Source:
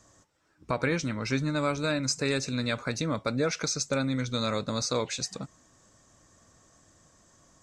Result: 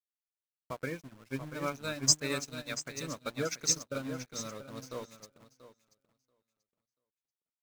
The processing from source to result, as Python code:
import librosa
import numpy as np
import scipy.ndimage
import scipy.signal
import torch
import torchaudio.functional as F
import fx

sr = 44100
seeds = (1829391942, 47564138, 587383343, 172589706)

y = fx.high_shelf(x, sr, hz=2800.0, db=11.0, at=(1.61, 3.79))
y = fx.spec_gate(y, sr, threshold_db=-20, keep='strong')
y = fx.peak_eq(y, sr, hz=4100.0, db=-5.5, octaves=0.89)
y = fx.hum_notches(y, sr, base_hz=60, count=5)
y = np.where(np.abs(y) >= 10.0 ** (-33.0 / 20.0), y, 0.0)
y = fx.echo_feedback(y, sr, ms=685, feedback_pct=26, wet_db=-6.0)
y = fx.upward_expand(y, sr, threshold_db=-41.0, expansion=2.5)
y = F.gain(torch.from_numpy(y), 1.0).numpy()